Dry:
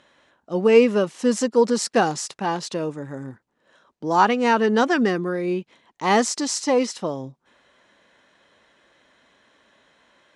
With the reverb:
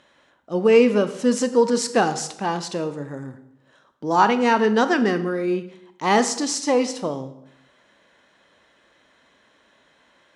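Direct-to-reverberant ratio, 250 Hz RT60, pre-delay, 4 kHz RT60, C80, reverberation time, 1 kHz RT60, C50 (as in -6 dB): 10.5 dB, 0.85 s, 22 ms, 0.60 s, 15.5 dB, 0.75 s, 0.75 s, 12.5 dB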